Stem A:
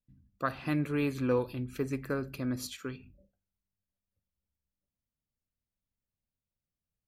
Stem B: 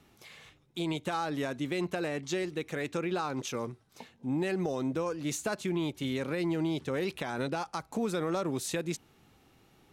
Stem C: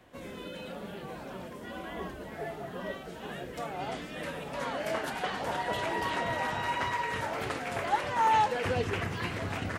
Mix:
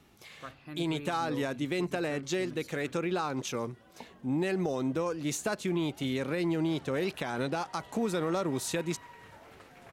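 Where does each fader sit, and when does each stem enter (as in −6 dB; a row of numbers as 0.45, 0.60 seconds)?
−13.0, +1.0, −19.5 decibels; 0.00, 0.00, 2.10 seconds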